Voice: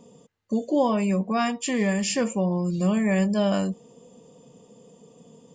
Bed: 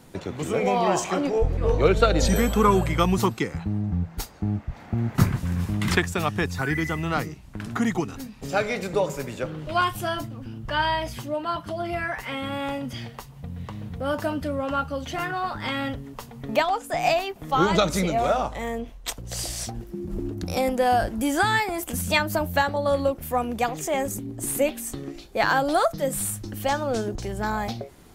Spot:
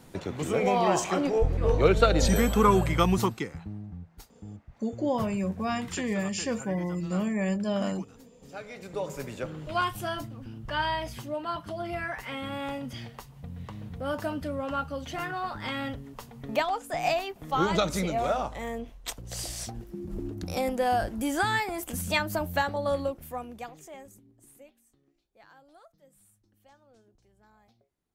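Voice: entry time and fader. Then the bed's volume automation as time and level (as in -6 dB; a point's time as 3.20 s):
4.30 s, -6.0 dB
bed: 3.13 s -2 dB
4.06 s -17.5 dB
8.63 s -17.5 dB
9.21 s -5 dB
22.91 s -5 dB
24.93 s -34.5 dB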